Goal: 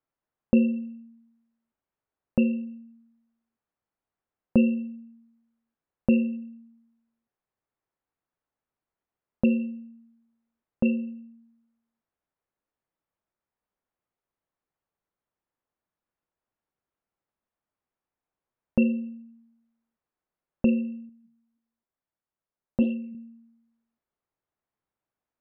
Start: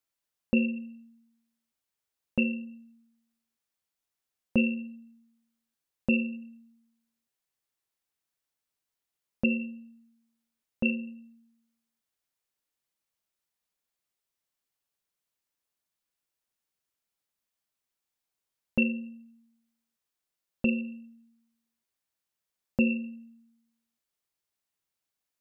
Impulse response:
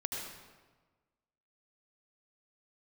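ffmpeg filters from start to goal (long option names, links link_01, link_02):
-filter_complex "[0:a]lowpass=1300,asettb=1/sr,asplit=3[link_01][link_02][link_03];[link_01]atrim=end=21.094[link_04];[link_02]atrim=start=21.09:end=23.15,asetpts=PTS-STARTPTS,afade=type=in:duration=0.004:curve=qsin,afade=type=out:start_time=2.056:duration=0.004:curve=qsin,flanger=delay=0.9:depth=6.9:regen=80:speed=1.6:shape=sinusoidal[link_05];[link_03]atrim=start=23.146[link_06];[link_04][link_05]acrossfade=duration=0.004:curve1=hsin:curve2=qsin[link_07];[link_07][link_06]acrossfade=duration=0.004:curve1=qsin:curve2=hsin,volume=5.5dB"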